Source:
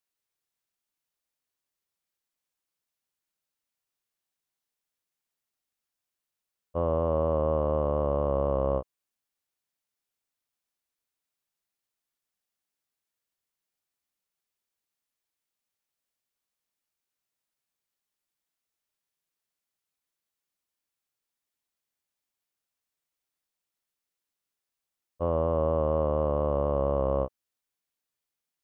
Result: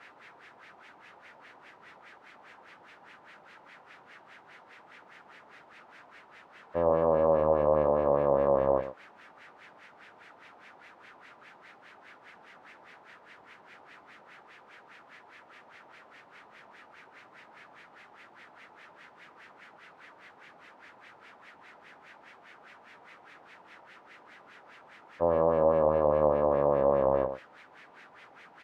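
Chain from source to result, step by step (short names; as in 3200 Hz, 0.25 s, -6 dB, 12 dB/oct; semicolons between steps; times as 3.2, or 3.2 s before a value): zero-crossing step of -40 dBFS; Bessel high-pass 190 Hz, order 2; notch 1100 Hz, Q 16; outdoor echo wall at 18 m, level -11 dB; LFO low-pass sine 4.9 Hz 860–2100 Hz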